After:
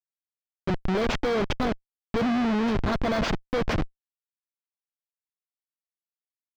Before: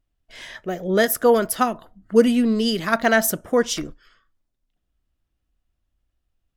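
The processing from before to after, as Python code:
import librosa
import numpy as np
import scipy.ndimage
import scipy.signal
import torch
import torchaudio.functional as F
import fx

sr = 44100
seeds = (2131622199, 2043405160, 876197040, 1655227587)

y = fx.bit_reversed(x, sr, seeds[0], block=16)
y = fx.schmitt(y, sr, flips_db=-23.0)
y = fx.air_absorb(y, sr, metres=200.0)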